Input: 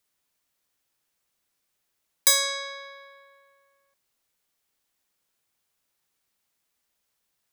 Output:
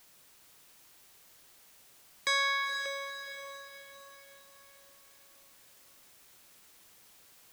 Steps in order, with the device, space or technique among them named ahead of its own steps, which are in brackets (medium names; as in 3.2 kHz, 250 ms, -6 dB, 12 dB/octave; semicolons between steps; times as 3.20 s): shortwave radio (band-pass 250–2500 Hz; tremolo 0.73 Hz, depth 75%; LFO notch saw down 0.35 Hz 510–2000 Hz; white noise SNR 19 dB); echo that smears into a reverb 478 ms, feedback 47%, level -7.5 dB; trim +7 dB